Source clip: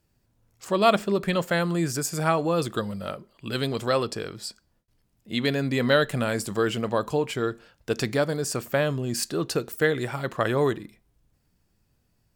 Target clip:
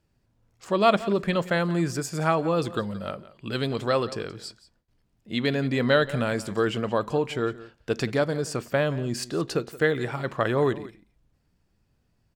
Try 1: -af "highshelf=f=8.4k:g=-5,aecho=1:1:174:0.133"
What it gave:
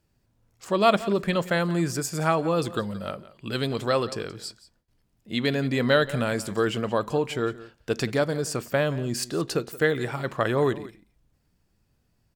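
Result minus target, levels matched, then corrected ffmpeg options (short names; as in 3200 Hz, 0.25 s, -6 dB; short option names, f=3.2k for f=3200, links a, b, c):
8000 Hz band +3.5 dB
-af "highshelf=f=8.4k:g=-14,aecho=1:1:174:0.133"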